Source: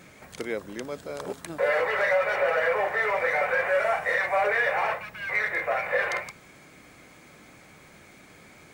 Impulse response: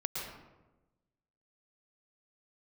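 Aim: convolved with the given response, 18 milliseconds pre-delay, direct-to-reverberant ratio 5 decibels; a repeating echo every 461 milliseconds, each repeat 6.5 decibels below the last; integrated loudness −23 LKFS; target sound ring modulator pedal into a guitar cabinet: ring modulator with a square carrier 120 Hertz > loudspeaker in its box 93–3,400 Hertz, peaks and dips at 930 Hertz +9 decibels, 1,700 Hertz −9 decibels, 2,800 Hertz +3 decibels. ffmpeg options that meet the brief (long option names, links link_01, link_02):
-filter_complex "[0:a]aecho=1:1:461|922|1383|1844|2305|2766:0.473|0.222|0.105|0.0491|0.0231|0.0109,asplit=2[link_01][link_02];[1:a]atrim=start_sample=2205,adelay=18[link_03];[link_02][link_03]afir=irnorm=-1:irlink=0,volume=-8dB[link_04];[link_01][link_04]amix=inputs=2:normalize=0,aeval=exprs='val(0)*sgn(sin(2*PI*120*n/s))':channel_layout=same,highpass=93,equalizer=frequency=930:width_type=q:width=4:gain=9,equalizer=frequency=1700:width_type=q:width=4:gain=-9,equalizer=frequency=2800:width_type=q:width=4:gain=3,lowpass=frequency=3400:width=0.5412,lowpass=frequency=3400:width=1.3066,volume=-0.5dB"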